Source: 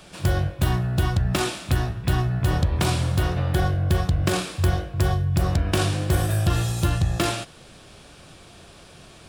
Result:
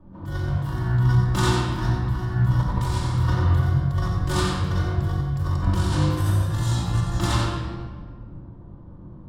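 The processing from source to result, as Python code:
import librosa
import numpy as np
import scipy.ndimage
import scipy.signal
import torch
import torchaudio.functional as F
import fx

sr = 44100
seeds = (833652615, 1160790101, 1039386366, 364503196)

y = fx.env_lowpass(x, sr, base_hz=340.0, full_db=-18.0)
y = fx.graphic_eq_31(y, sr, hz=(400, 630, 1000, 2500, 10000), db=(-6, -10, 11, -11, -3))
y = fx.over_compress(y, sr, threshold_db=-25.0, ratio=-0.5)
y = y + 10.0 ** (-6.5 / 20.0) * np.pad(y, (int(90 * sr / 1000.0), 0))[:len(y)]
y = fx.room_shoebox(y, sr, seeds[0], volume_m3=2100.0, walls='mixed', distance_m=2.6)
y = y * librosa.db_to_amplitude(-3.0)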